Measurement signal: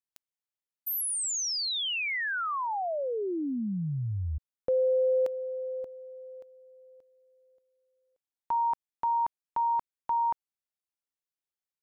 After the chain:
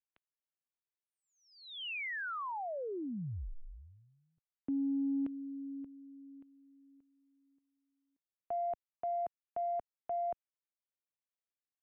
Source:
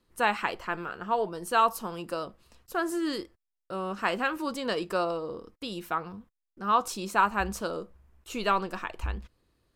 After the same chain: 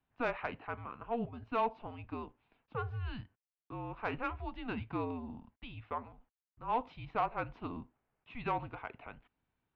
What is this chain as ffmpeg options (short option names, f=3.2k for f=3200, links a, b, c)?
-af "highpass=f=250:t=q:w=0.5412,highpass=f=250:t=q:w=1.307,lowpass=f=3.3k:t=q:w=0.5176,lowpass=f=3.3k:t=q:w=0.7071,lowpass=f=3.3k:t=q:w=1.932,afreqshift=-240,asoftclip=type=tanh:threshold=-13dB,volume=-8dB"